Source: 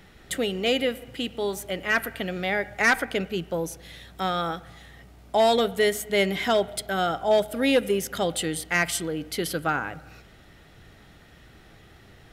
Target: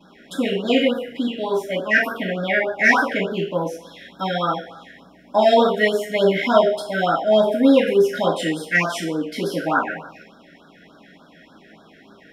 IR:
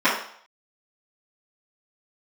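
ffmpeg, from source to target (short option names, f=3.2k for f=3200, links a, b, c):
-filter_complex "[1:a]atrim=start_sample=2205[a];[0:a][a]afir=irnorm=-1:irlink=0,afftfilt=real='re*(1-between(b*sr/1024,950*pow(2400/950,0.5+0.5*sin(2*PI*3.4*pts/sr))/1.41,950*pow(2400/950,0.5+0.5*sin(2*PI*3.4*pts/sr))*1.41))':imag='im*(1-between(b*sr/1024,950*pow(2400/950,0.5+0.5*sin(2*PI*3.4*pts/sr))/1.41,950*pow(2400/950,0.5+0.5*sin(2*PI*3.4*pts/sr))*1.41))':win_size=1024:overlap=0.75,volume=-12.5dB"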